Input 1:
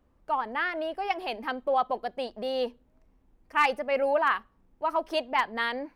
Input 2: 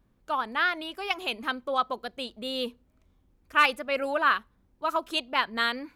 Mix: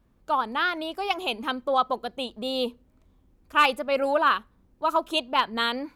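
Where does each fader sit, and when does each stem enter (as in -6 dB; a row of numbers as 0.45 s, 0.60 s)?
-4.5 dB, +1.5 dB; 0.00 s, 0.00 s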